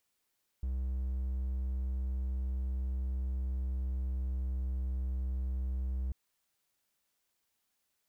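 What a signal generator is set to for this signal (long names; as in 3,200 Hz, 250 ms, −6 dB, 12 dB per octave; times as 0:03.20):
tone triangle 64.3 Hz −29.5 dBFS 5.49 s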